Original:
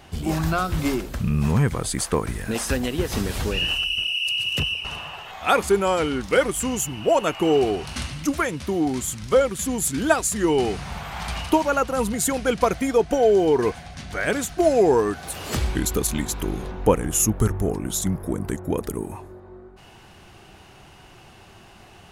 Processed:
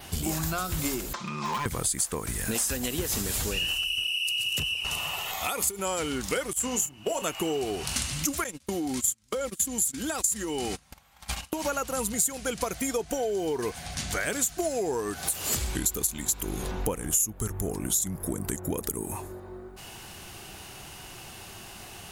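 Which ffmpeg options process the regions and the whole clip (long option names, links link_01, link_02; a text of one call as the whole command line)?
ffmpeg -i in.wav -filter_complex "[0:a]asettb=1/sr,asplit=3[link_01][link_02][link_03];[link_01]atrim=end=1.134[link_04];[link_02]atrim=start=1.13:end=1.66,asetpts=PTS-STARTPTS,afade=type=in:duration=0.004:curve=qsin,afade=type=out:start_time=0.526:duration=0.004:curve=qsin,highpass=490,equalizer=frequency=500:width_type=q:width=4:gain=-7,equalizer=frequency=720:width_type=q:width=4:gain=-5,equalizer=frequency=1000:width_type=q:width=4:gain=10,equalizer=frequency=1700:width_type=q:width=4:gain=-6,equalizer=frequency=2800:width_type=q:width=4:gain=-9,equalizer=frequency=4400:width_type=q:width=4:gain=-4,lowpass=frequency=5000:width=0.5412,lowpass=frequency=5000:width=1.3066,aecho=1:1:5.7:0.68,atrim=end_sample=23373,asoftclip=type=hard:threshold=-24.5dB[link_05];[link_03]atrim=start=1.656[link_06];[link_04][link_05]acrossfade=duration=0.004:curve1=hsin:curve2=qsin[link_07];[link_07][link_06]acrossfade=duration=0.004:curve1=qsin:curve2=hsin,asettb=1/sr,asplit=3[link_08][link_09][link_10];[link_08]atrim=end=4.914[link_11];[link_09]atrim=start=4.91:end=5.79,asetpts=PTS-STARTPTS,afade=type=in:duration=0.004:curve=qsin,afade=type=out:start_time=0.876:duration=0.004:curve=qsin,acompressor=threshold=-23dB:ratio=10:attack=3.2:release=140:knee=1:detection=peak,asuperstop=centerf=1600:order=4:qfactor=7,highshelf=frequency=8200:gain=8.5[link_12];[link_10]atrim=start=5.786[link_13];[link_11][link_12]acrossfade=duration=0.004:curve1=hsin:curve2=qsin[link_14];[link_14][link_13]acrossfade=duration=0.004:curve1=qsin:curve2=hsin,asettb=1/sr,asplit=3[link_15][link_16][link_17];[link_15]atrim=end=6.534[link_18];[link_16]atrim=start=6.53:end=7.22,asetpts=PTS-STARTPTS,afade=type=in:duration=0.004:curve=qsin,afade=type=out:start_time=0.686:duration=0.004:curve=qsin,agate=range=-17dB:threshold=-28dB:ratio=16:release=100:detection=peak,acrossover=split=210|1800|6800[link_19][link_20][link_21][link_22];[link_19]acompressor=threshold=-42dB:ratio=3[link_23];[link_20]acompressor=threshold=-20dB:ratio=3[link_24];[link_21]acompressor=threshold=-40dB:ratio=3[link_25];[link_22]acompressor=threshold=-44dB:ratio=3[link_26];[link_23][link_24][link_25][link_26]amix=inputs=4:normalize=0,asplit=2[link_27][link_28];[link_28]adelay=29,volume=-10.5dB[link_29];[link_27][link_29]amix=inputs=2:normalize=0,atrim=end_sample=30429[link_30];[link_17]atrim=start=7.216[link_31];[link_18][link_30]acrossfade=duration=0.004:curve1=hsin:curve2=qsin[link_32];[link_32][link_31]acrossfade=duration=0.004:curve1=qsin:curve2=hsin,asettb=1/sr,asplit=3[link_33][link_34][link_35];[link_33]atrim=end=8.444[link_36];[link_34]atrim=start=8.44:end=11.65,asetpts=PTS-STARTPTS,afade=type=in:duration=0.004:curve=qsin,afade=type=out:start_time=3.206:duration=0.004:curve=qsin,agate=range=-31dB:threshold=-28dB:ratio=16:release=100:detection=peak,aecho=1:1:3.7:0.3,atrim=end_sample=141561,acompressor=threshold=-25dB:ratio=6:attack=3.2:release=140:knee=1:detection=peak[link_37];[link_35]atrim=start=11.646[link_38];[link_36][link_37]acrossfade=duration=0.004:curve1=hsin:curve2=qsin[link_39];[link_39][link_38]acrossfade=duration=0.004:curve1=qsin:curve2=hsin,aemphasis=mode=production:type=75kf,acompressor=threshold=-28dB:ratio=6,adynamicequalizer=threshold=0.00398:dfrequency=7200:dqfactor=5:tfrequency=7200:tqfactor=5:attack=5:release=100:ratio=0.375:range=3:mode=boostabove:tftype=bell,volume=1dB" out.wav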